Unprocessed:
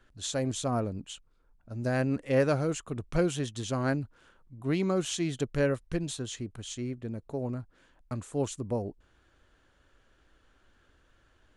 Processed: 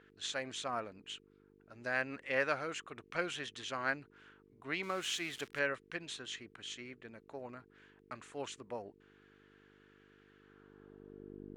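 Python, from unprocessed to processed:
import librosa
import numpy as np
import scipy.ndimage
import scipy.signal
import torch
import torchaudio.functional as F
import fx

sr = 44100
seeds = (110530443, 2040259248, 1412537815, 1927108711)

y = fx.crossing_spikes(x, sr, level_db=-31.5, at=(4.83, 5.59))
y = fx.dmg_buzz(y, sr, base_hz=50.0, harmonics=9, level_db=-46.0, tilt_db=-4, odd_only=False)
y = fx.filter_sweep_bandpass(y, sr, from_hz=2000.0, to_hz=320.0, start_s=10.37, end_s=11.44, q=1.3)
y = y * 10.0 ** (3.5 / 20.0)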